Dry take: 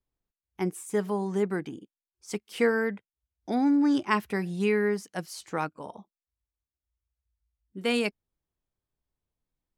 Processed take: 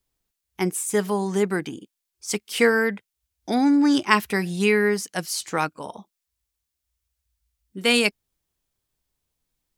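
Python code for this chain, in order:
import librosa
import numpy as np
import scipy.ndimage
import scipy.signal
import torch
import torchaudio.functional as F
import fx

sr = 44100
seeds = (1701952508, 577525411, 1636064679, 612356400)

y = fx.high_shelf(x, sr, hz=2100.0, db=10.0)
y = y * 10.0 ** (4.5 / 20.0)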